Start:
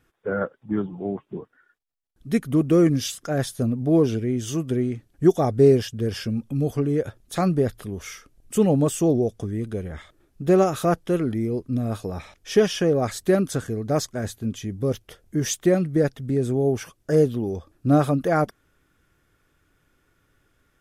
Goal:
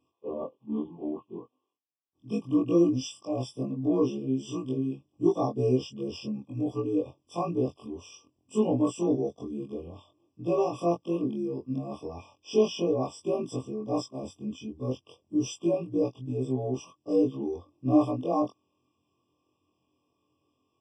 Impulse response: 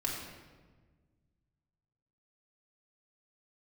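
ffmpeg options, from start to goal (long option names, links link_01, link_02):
-af "afftfilt=real='re':imag='-im':win_size=2048:overlap=0.75,highpass=frequency=100:width=0.5412,highpass=frequency=100:width=1.3066,equalizer=frequency=160:width_type=q:width=4:gain=-8,equalizer=frequency=290:width_type=q:width=4:gain=6,equalizer=frequency=1100:width_type=q:width=4:gain=6,equalizer=frequency=1600:width_type=q:width=4:gain=10,equalizer=frequency=6500:width_type=q:width=4:gain=3,lowpass=frequency=7300:width=0.5412,lowpass=frequency=7300:width=1.3066,afftfilt=real='re*eq(mod(floor(b*sr/1024/1200),2),0)':imag='im*eq(mod(floor(b*sr/1024/1200),2),0)':win_size=1024:overlap=0.75,volume=-3dB"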